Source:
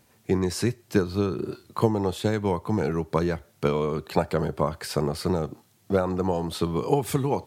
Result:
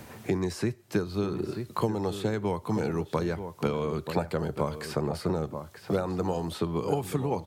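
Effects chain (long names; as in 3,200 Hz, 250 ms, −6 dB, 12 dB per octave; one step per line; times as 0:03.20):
slap from a distant wall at 160 metres, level −11 dB
multiband upward and downward compressor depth 70%
level −4.5 dB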